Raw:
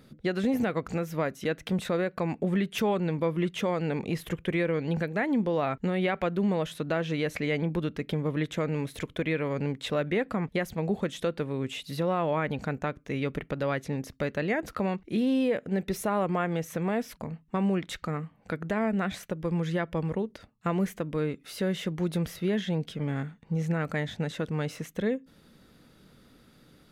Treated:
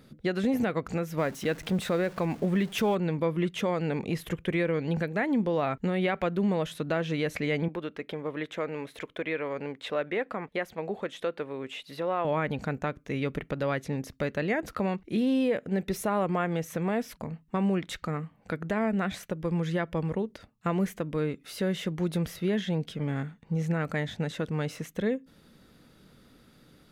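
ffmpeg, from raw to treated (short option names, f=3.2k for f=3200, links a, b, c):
-filter_complex "[0:a]asettb=1/sr,asplit=3[a][b][c];[a]atrim=end=1.174[d];[b]atrim=start=1.17:end=2.95,asetpts=PTS-STARTPTS,afade=t=in:d=0.004:c=qsin,afade=t=out:st=1.776:d=0.004:c=qsin,aeval=exprs='val(0)+0.5*0.00794*sgn(val(0))':c=same[e];[c]atrim=start=2.946[f];[d][e]acrossfade=d=0.004:c1=hsin:c2=qsin[g];[g][f]acrossfade=d=0.004:c1=qsin:c2=hsin,asettb=1/sr,asplit=3[h][i][j];[h]atrim=end=7.684[k];[i]atrim=start=7.68:end=12.25,asetpts=PTS-STARTPTS,afade=t=in:d=0.004:c=qsin,afade=t=out:st=4.566:d=0.004:c=qsin,bass=f=250:g=-15,treble=f=4k:g=-9[l];[j]atrim=start=12.246[m];[k][l]acrossfade=d=0.004:c1=hsin:c2=qsin[n];[n][m]acrossfade=d=0.004:c1=qsin:c2=hsin"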